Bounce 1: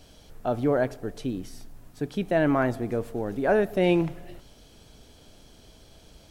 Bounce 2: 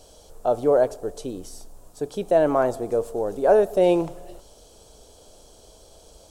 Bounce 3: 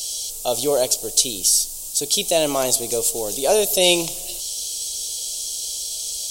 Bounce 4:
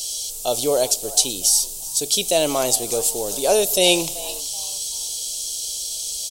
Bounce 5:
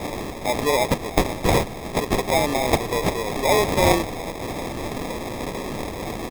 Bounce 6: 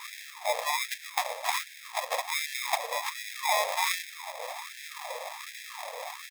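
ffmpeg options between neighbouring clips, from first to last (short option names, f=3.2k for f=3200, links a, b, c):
-af "equalizer=f=125:t=o:w=1:g=-7,equalizer=f=250:t=o:w=1:g=-6,equalizer=f=500:t=o:w=1:g=8,equalizer=f=1k:t=o:w=1:g=4,equalizer=f=2k:t=o:w=1:g=-11,equalizer=f=8k:t=o:w=1:g=9,volume=1dB"
-af "aexciter=amount=9.3:drive=9.9:freq=2.6k,volume=-1.5dB"
-filter_complex "[0:a]asplit=4[a][b][c][d];[b]adelay=381,afreqshift=120,volume=-18.5dB[e];[c]adelay=762,afreqshift=240,volume=-28.4dB[f];[d]adelay=1143,afreqshift=360,volume=-38.3dB[g];[a][e][f][g]amix=inputs=4:normalize=0"
-af "acrusher=samples=30:mix=1:aa=0.000001,volume=-1dB"
-af "afftfilt=real='re*gte(b*sr/1024,460*pow(1500/460,0.5+0.5*sin(2*PI*1.3*pts/sr)))':imag='im*gte(b*sr/1024,460*pow(1500/460,0.5+0.5*sin(2*PI*1.3*pts/sr)))':win_size=1024:overlap=0.75,volume=-4.5dB"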